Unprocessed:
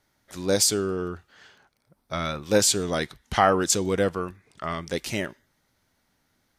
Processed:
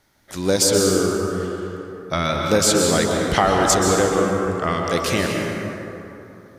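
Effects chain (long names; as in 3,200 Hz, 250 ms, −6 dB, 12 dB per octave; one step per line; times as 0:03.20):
downward compressor 2.5 to 1, threshold −24 dBFS, peak gain reduction 7.5 dB
dense smooth reverb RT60 3.1 s, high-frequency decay 0.45×, pre-delay 115 ms, DRR 0 dB
level +7.5 dB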